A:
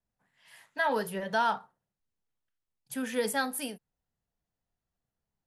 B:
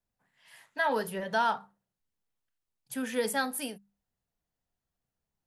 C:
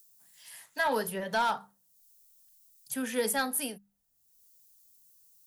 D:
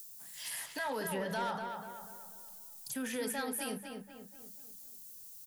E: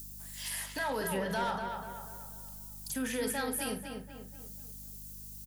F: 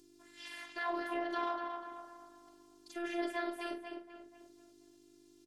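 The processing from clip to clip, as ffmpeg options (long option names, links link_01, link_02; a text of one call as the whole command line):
ffmpeg -i in.wav -af "bandreject=frequency=50:width_type=h:width=6,bandreject=frequency=100:width_type=h:width=6,bandreject=frequency=150:width_type=h:width=6,bandreject=frequency=200:width_type=h:width=6" out.wav
ffmpeg -i in.wav -filter_complex "[0:a]highshelf=frequency=10000:gain=10.5,acrossover=split=260|1300|4700[link_01][link_02][link_03][link_04];[link_04]acompressor=mode=upward:threshold=-41dB:ratio=2.5[link_05];[link_01][link_02][link_03][link_05]amix=inputs=4:normalize=0,asoftclip=type=hard:threshold=-21dB" out.wav
ffmpeg -i in.wav -filter_complex "[0:a]acompressor=threshold=-39dB:ratio=6,alimiter=level_in=16.5dB:limit=-24dB:level=0:latency=1:release=52,volume=-16.5dB,asplit=2[link_01][link_02];[link_02]adelay=244,lowpass=frequency=3000:poles=1,volume=-5dB,asplit=2[link_03][link_04];[link_04]adelay=244,lowpass=frequency=3000:poles=1,volume=0.47,asplit=2[link_05][link_06];[link_06]adelay=244,lowpass=frequency=3000:poles=1,volume=0.47,asplit=2[link_07][link_08];[link_08]adelay=244,lowpass=frequency=3000:poles=1,volume=0.47,asplit=2[link_09][link_10];[link_10]adelay=244,lowpass=frequency=3000:poles=1,volume=0.47,asplit=2[link_11][link_12];[link_12]adelay=244,lowpass=frequency=3000:poles=1,volume=0.47[link_13];[link_01][link_03][link_05][link_07][link_09][link_11][link_13]amix=inputs=7:normalize=0,volume=10.5dB" out.wav
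ffmpeg -i in.wav -filter_complex "[0:a]aeval=exprs='val(0)+0.00251*(sin(2*PI*50*n/s)+sin(2*PI*2*50*n/s)/2+sin(2*PI*3*50*n/s)/3+sin(2*PI*4*50*n/s)/4+sin(2*PI*5*50*n/s)/5)':channel_layout=same,asplit=2[link_01][link_02];[link_02]adelay=46,volume=-11dB[link_03];[link_01][link_03]amix=inputs=2:normalize=0,volume=2.5dB" out.wav
ffmpeg -i in.wav -af "aeval=exprs='val(0)*sin(2*PI*130*n/s)':channel_layout=same,highpass=260,lowpass=3400,afftfilt=real='hypot(re,im)*cos(PI*b)':imag='0':win_size=512:overlap=0.75,volume=3.5dB" out.wav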